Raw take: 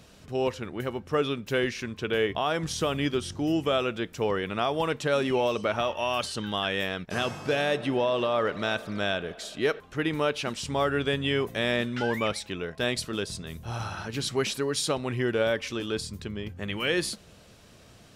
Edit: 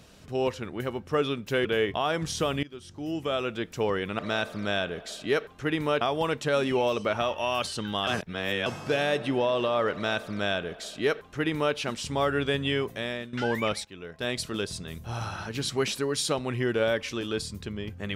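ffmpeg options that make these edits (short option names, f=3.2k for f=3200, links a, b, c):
-filter_complex "[0:a]asplit=9[a][b][c][d][e][f][g][h][i];[a]atrim=end=1.652[j];[b]atrim=start=2.058:end=3.04,asetpts=PTS-STARTPTS,afade=t=out:st=0.978:d=0.004:c=hsin:silence=0.0794328[k];[c]atrim=start=3.04:end=4.602,asetpts=PTS-STARTPTS,afade=t=in:d=1.06:silence=0.0794328[l];[d]atrim=start=8.518:end=10.342[m];[e]atrim=start=4.598:end=6.662[n];[f]atrim=start=6.658:end=7.252,asetpts=PTS-STARTPTS,areverse[o];[g]atrim=start=7.248:end=11.92,asetpts=PTS-STARTPTS,afade=t=out:st=4.012:d=0.66:silence=0.199526[p];[h]atrim=start=11.92:end=12.44,asetpts=PTS-STARTPTS,afade=t=in:d=0.004:c=hsin:silence=0.199526,afade=t=out:st=0.516:d=0.004:c=hsin:silence=0.188365[q];[i]atrim=start=12.44,asetpts=PTS-STARTPTS,afade=t=in:d=0.65:silence=0.188365[r];[k][l]concat=n=2:v=0:a=1[s];[j][s]acrossfade=d=0.004:c1=hsin:c2=hsin[t];[t][m]acrossfade=d=0.004:c1=hsin:c2=hsin[u];[u][n]acrossfade=d=0.004:c1=hsin:c2=hsin[v];[v][o]acrossfade=d=0.004:c1=hsin:c2=hsin[w];[p][q][r]concat=n=3:v=0:a=1[x];[w][x]acrossfade=d=0.004:c1=hsin:c2=hsin"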